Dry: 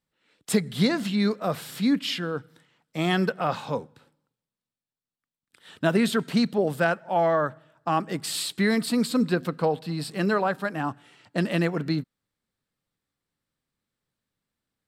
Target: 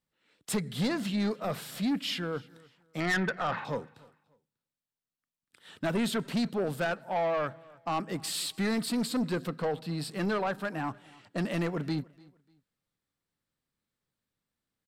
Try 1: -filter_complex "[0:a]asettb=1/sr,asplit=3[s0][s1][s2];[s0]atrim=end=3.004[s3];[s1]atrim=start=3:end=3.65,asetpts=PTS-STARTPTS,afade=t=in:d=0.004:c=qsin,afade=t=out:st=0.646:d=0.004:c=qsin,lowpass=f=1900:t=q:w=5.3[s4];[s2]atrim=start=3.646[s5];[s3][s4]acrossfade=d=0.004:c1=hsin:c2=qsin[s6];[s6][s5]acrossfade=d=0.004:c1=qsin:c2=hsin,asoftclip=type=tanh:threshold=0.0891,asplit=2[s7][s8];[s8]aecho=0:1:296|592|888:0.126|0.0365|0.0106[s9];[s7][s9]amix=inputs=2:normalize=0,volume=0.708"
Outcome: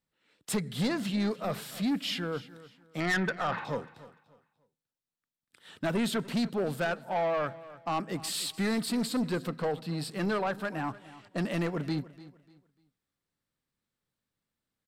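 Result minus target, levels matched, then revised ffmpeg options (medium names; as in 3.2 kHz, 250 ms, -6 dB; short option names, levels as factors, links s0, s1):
echo-to-direct +6.5 dB
-filter_complex "[0:a]asettb=1/sr,asplit=3[s0][s1][s2];[s0]atrim=end=3.004[s3];[s1]atrim=start=3:end=3.65,asetpts=PTS-STARTPTS,afade=t=in:d=0.004:c=qsin,afade=t=out:st=0.646:d=0.004:c=qsin,lowpass=f=1900:t=q:w=5.3[s4];[s2]atrim=start=3.646[s5];[s3][s4]acrossfade=d=0.004:c1=hsin:c2=qsin[s6];[s6][s5]acrossfade=d=0.004:c1=qsin:c2=hsin,asoftclip=type=tanh:threshold=0.0891,asplit=2[s7][s8];[s8]aecho=0:1:296|592:0.0596|0.0173[s9];[s7][s9]amix=inputs=2:normalize=0,volume=0.708"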